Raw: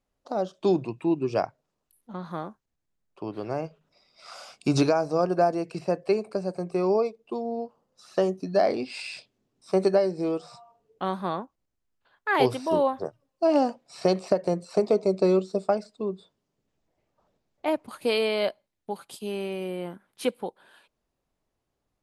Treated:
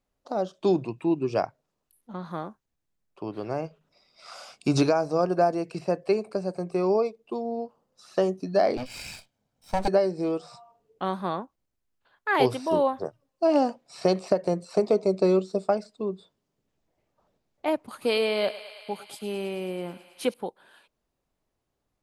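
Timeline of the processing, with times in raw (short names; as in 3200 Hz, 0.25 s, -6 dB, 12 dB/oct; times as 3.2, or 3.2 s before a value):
8.77–9.88 minimum comb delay 1.3 ms
17.79–20.34 thinning echo 0.108 s, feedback 83%, high-pass 570 Hz, level -14 dB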